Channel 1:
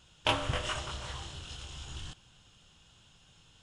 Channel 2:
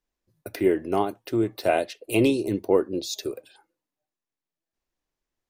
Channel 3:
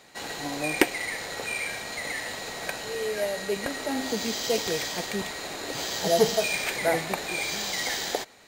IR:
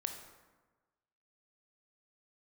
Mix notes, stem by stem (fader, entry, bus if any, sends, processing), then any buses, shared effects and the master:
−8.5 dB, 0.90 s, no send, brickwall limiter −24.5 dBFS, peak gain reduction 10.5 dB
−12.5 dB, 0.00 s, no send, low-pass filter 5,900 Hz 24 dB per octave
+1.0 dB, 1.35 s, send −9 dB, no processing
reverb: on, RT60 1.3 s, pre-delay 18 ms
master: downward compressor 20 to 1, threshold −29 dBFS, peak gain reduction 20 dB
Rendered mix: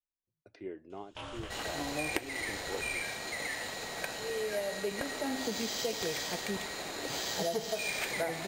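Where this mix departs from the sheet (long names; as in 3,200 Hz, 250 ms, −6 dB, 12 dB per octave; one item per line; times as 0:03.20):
stem 2 −12.5 dB → −21.0 dB
stem 3 +1.0 dB → −6.5 dB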